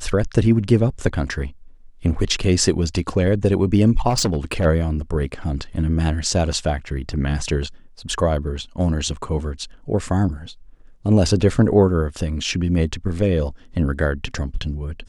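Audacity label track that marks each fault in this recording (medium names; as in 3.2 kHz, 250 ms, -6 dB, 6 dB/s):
4.090000	4.660000	clipped -15 dBFS
9.160000	9.170000	dropout 7.3 ms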